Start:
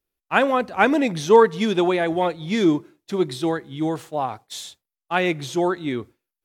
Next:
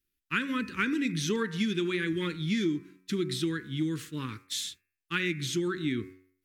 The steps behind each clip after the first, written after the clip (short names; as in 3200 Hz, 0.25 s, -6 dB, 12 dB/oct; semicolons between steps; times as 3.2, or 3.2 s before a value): Chebyshev band-stop 290–1700 Hz, order 2; de-hum 92.89 Hz, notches 29; compressor 5:1, threshold -28 dBFS, peak gain reduction 11.5 dB; gain +1.5 dB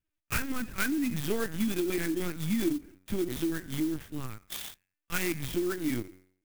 LPC vocoder at 8 kHz pitch kept; clock jitter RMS 0.059 ms